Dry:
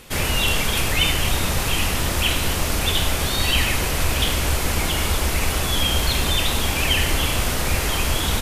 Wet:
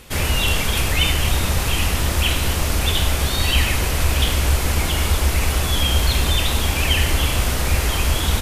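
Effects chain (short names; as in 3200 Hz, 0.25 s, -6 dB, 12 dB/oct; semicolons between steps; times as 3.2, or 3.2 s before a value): bell 63 Hz +6.5 dB 1.1 oct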